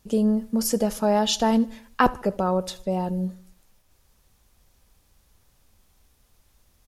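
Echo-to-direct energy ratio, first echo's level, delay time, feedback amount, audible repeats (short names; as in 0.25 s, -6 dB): -20.5 dB, -22.0 dB, 76 ms, 51%, 3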